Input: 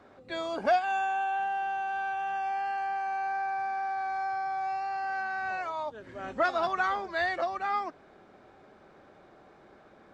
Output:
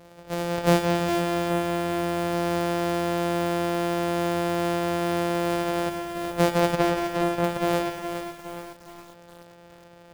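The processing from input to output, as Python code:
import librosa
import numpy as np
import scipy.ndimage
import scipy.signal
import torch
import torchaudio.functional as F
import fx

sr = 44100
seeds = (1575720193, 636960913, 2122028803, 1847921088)

y = np.r_[np.sort(x[:len(x) // 256 * 256].reshape(-1, 256), axis=1).ravel(), x[len(x) // 256 * 256:]]
y = fx.peak_eq(y, sr, hz=580.0, db=11.0, octaves=0.66)
y = y + 10.0 ** (-12.0 / 20.0) * np.pad(y, (int(180 * sr / 1000.0), 0))[:len(y)]
y = fx.rider(y, sr, range_db=4, speed_s=2.0)
y = fx.high_shelf(y, sr, hz=5300.0, db=-11.5, at=(6.76, 7.44))
y = fx.rev_schroeder(y, sr, rt60_s=1.1, comb_ms=38, drr_db=9.5)
y = fx.echo_crushed(y, sr, ms=415, feedback_pct=55, bits=7, wet_db=-7.5)
y = F.gain(torch.from_numpy(y), 2.0).numpy()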